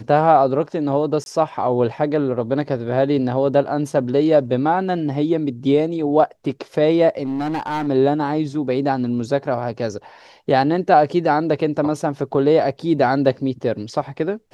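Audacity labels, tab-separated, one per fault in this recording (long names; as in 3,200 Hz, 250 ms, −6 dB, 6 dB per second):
1.240000	1.260000	drop-out 21 ms
7.240000	7.880000	clipping −19.5 dBFS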